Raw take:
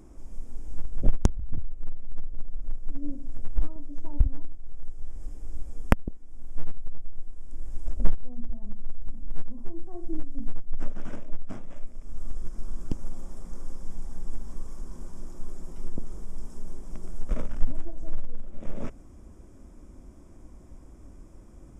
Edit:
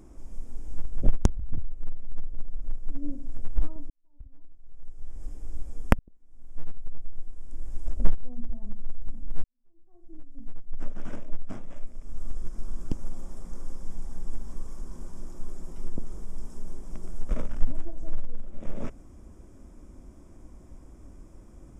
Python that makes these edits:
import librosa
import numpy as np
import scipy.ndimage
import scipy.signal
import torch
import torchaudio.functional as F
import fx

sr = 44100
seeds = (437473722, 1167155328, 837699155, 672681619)

y = fx.edit(x, sr, fx.fade_in_span(start_s=3.9, length_s=1.35, curve='qua'),
    fx.fade_in_span(start_s=5.99, length_s=1.06),
    fx.fade_in_span(start_s=9.44, length_s=1.66, curve='qua'), tone=tone)